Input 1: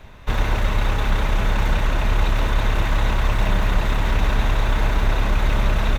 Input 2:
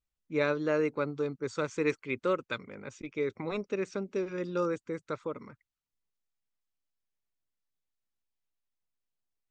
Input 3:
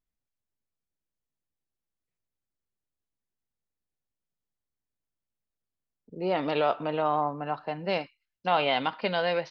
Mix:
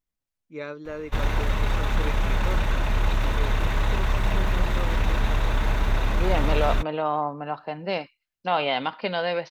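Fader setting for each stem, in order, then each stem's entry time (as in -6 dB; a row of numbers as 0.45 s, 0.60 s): -4.0 dB, -6.5 dB, +1.0 dB; 0.85 s, 0.20 s, 0.00 s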